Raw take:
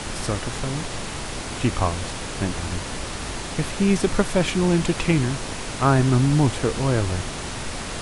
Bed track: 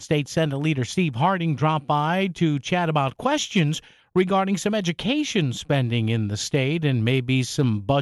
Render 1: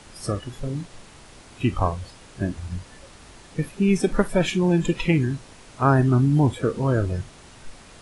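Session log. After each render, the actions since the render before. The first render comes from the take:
noise reduction from a noise print 16 dB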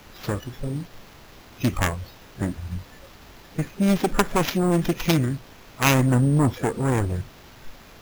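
phase distortion by the signal itself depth 0.88 ms
decimation without filtering 5×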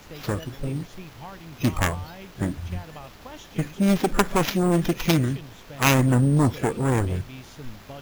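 mix in bed track −20.5 dB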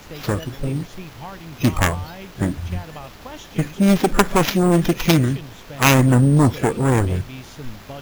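level +5 dB
brickwall limiter −1 dBFS, peak gain reduction 1 dB

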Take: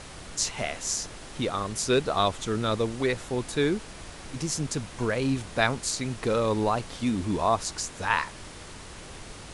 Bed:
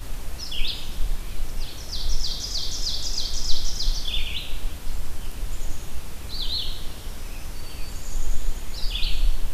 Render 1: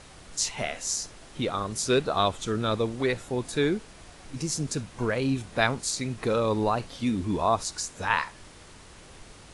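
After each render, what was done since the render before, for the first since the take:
noise reduction from a noise print 6 dB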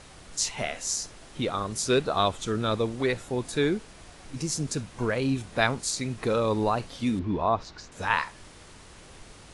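0:07.19–0:07.92: high-frequency loss of the air 240 metres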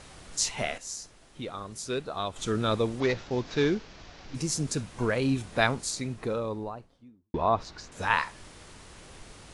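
0:00.78–0:02.36: clip gain −8.5 dB
0:03.00–0:04.35: variable-slope delta modulation 32 kbit/s
0:05.50–0:07.34: fade out and dull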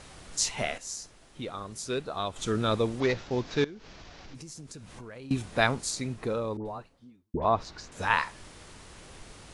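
0:03.64–0:05.31: downward compressor, threshold −42 dBFS
0:06.57–0:07.45: all-pass dispersion highs, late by 86 ms, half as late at 1,200 Hz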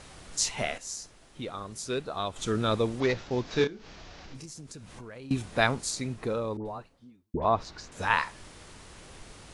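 0:03.48–0:04.46: double-tracking delay 30 ms −5.5 dB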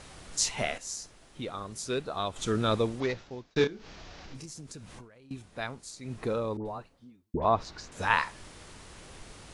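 0:02.77–0:03.56: fade out
0:04.95–0:06.16: duck −12 dB, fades 0.14 s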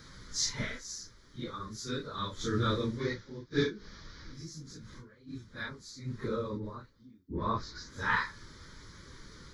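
random phases in long frames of 100 ms
phaser with its sweep stopped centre 2,700 Hz, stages 6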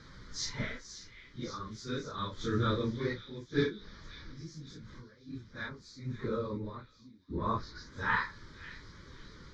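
high-frequency loss of the air 120 metres
echo through a band-pass that steps 542 ms, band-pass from 2,900 Hz, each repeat 0.7 octaves, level −10 dB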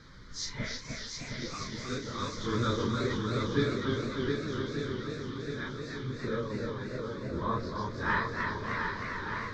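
feedback echo with a long and a short gap by turns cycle 1,189 ms, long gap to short 1.5 to 1, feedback 47%, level −5 dB
feedback echo with a swinging delay time 306 ms, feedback 65%, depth 138 cents, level −4.5 dB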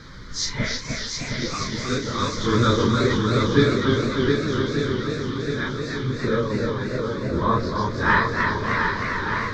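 level +11 dB

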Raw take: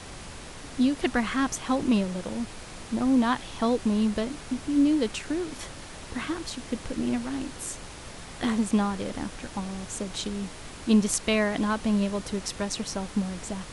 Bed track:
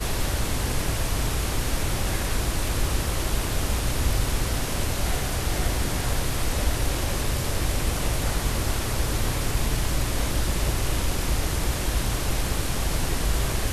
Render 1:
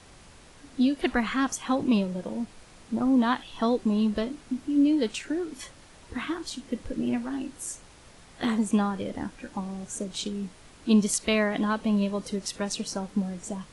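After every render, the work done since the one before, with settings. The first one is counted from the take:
noise reduction from a noise print 10 dB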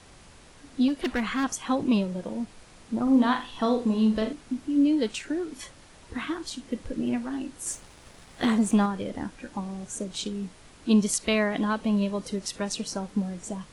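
0:00.88–0:01.44: hard clipping −22 dBFS
0:03.03–0:04.33: flutter between parallel walls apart 7.1 metres, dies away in 0.33 s
0:07.66–0:08.86: leveller curve on the samples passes 1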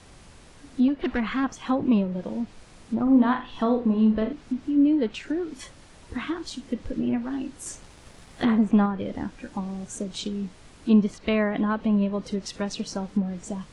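treble cut that deepens with the level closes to 2,300 Hz, closed at −22.5 dBFS
low-shelf EQ 340 Hz +3.5 dB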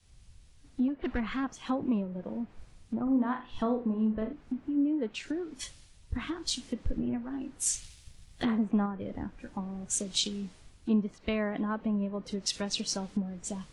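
downward compressor 2.5 to 1, threshold −32 dBFS, peak gain reduction 12.5 dB
multiband upward and downward expander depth 100%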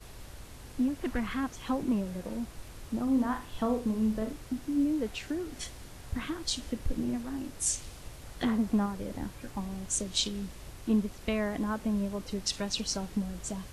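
mix in bed track −22 dB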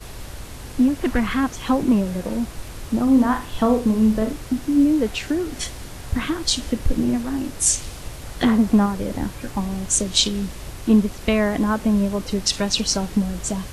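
level +11.5 dB
brickwall limiter −2 dBFS, peak gain reduction 1 dB

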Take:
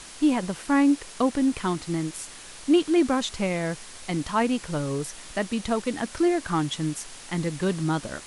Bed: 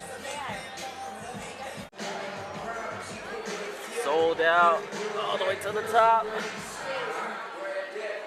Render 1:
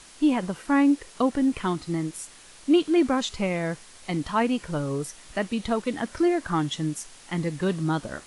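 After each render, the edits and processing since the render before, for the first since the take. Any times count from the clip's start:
noise reduction from a noise print 6 dB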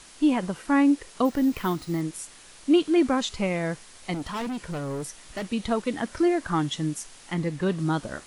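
0:01.25–0:02.01: bad sample-rate conversion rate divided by 3×, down none, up hold
0:04.14–0:05.47: hard clipping −28.5 dBFS
0:07.34–0:07.79: high-shelf EQ 5,100 Hz −6 dB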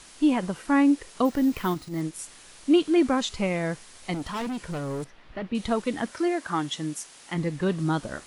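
0:01.74–0:02.19: transient designer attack −12 dB, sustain −3 dB
0:05.04–0:05.55: high-frequency loss of the air 350 metres
0:06.10–0:07.35: high-pass filter 450 Hz → 180 Hz 6 dB per octave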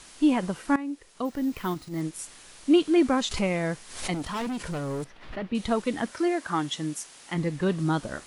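0:00.76–0:02.18: fade in linear, from −17 dB
0:03.31–0:05.39: background raised ahead of every attack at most 85 dB per second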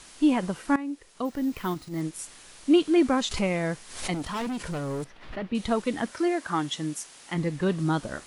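no processing that can be heard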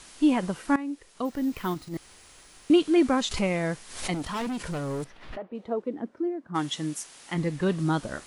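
0:01.97–0:02.70: fill with room tone
0:05.36–0:06.54: resonant band-pass 690 Hz → 180 Hz, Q 1.6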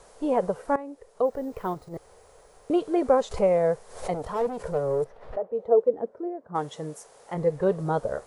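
drawn EQ curve 110 Hz 0 dB, 320 Hz −9 dB, 450 Hz +13 dB, 2,800 Hz −14 dB, 7,400 Hz −9 dB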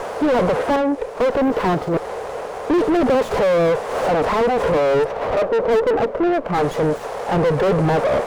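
mid-hump overdrive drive 40 dB, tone 1,000 Hz, clips at −8.5 dBFS
windowed peak hold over 9 samples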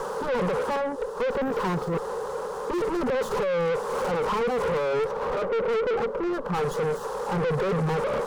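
phaser with its sweep stopped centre 450 Hz, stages 8
soft clipping −22.5 dBFS, distortion −9 dB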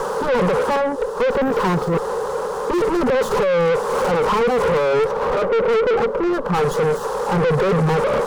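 level +8 dB

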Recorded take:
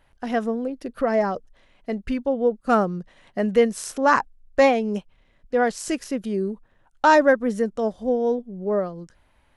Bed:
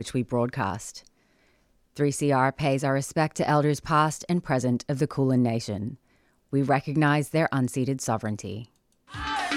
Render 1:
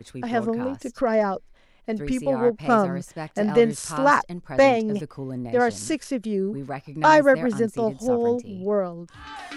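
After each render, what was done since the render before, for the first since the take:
mix in bed −9.5 dB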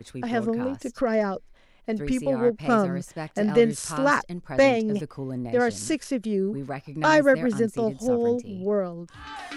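dynamic equaliser 890 Hz, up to −7 dB, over −34 dBFS, Q 1.6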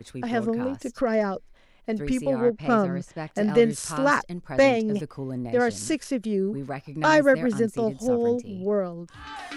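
0:02.41–0:03.28: high-frequency loss of the air 65 metres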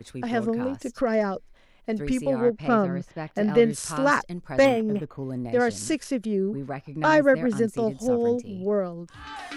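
0:02.68–0:03.74: parametric band 8,100 Hz −13 dB 0.76 octaves
0:04.65–0:05.23: linearly interpolated sample-rate reduction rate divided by 8×
0:06.25–0:07.52: high-shelf EQ 4,000 Hz −8.5 dB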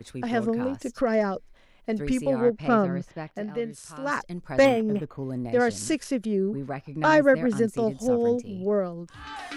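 0:03.10–0:04.39: duck −11.5 dB, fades 0.38 s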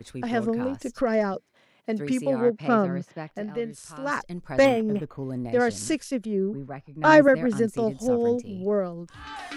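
0:01.34–0:03.30: high-pass filter 120 Hz 24 dB per octave
0:06.02–0:07.28: multiband upward and downward expander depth 70%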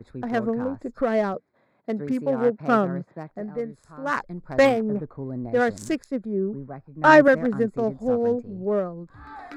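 adaptive Wiener filter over 15 samples
dynamic equaliser 1,300 Hz, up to +4 dB, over −35 dBFS, Q 0.72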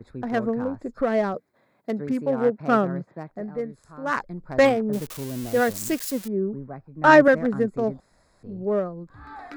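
0:01.34–0:01.91: high-shelf EQ 5,000 Hz +9.5 dB
0:04.93–0:06.28: spike at every zero crossing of −23.5 dBFS
0:08.00–0:08.43: fill with room tone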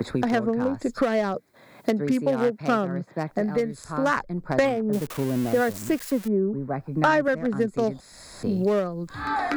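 multiband upward and downward compressor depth 100%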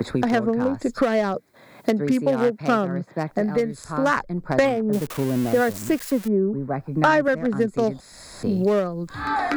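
level +2.5 dB

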